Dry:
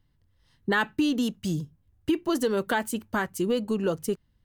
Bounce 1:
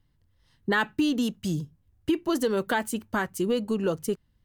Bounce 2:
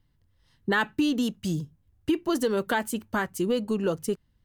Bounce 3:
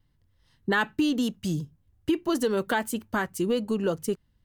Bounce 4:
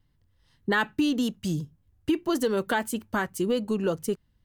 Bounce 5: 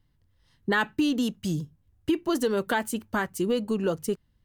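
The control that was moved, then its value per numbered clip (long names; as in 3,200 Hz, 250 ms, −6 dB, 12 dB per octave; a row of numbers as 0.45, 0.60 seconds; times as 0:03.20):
pitch vibrato, speed: 3, 6.6, 1.1, 1.8, 4.4 Hertz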